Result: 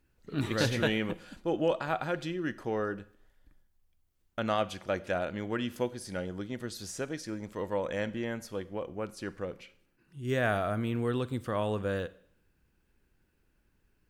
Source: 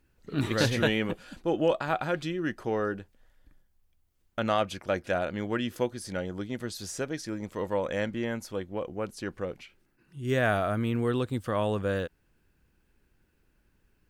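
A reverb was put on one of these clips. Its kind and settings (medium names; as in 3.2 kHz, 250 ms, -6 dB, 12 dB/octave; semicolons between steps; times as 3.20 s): Schroeder reverb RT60 0.62 s, combs from 33 ms, DRR 17 dB; trim -3 dB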